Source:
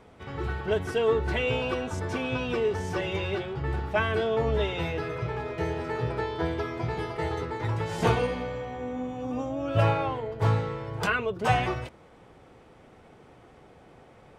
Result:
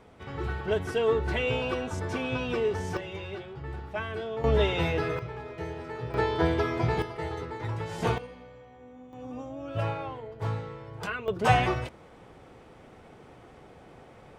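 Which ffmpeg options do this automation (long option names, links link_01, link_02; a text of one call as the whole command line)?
ffmpeg -i in.wav -af "asetnsamples=nb_out_samples=441:pad=0,asendcmd='2.97 volume volume -8dB;4.44 volume volume 3dB;5.19 volume volume -6.5dB;6.14 volume volume 4dB;7.02 volume volume -4dB;8.18 volume volume -15.5dB;9.13 volume volume -7.5dB;11.28 volume volume 2dB',volume=-1dB" out.wav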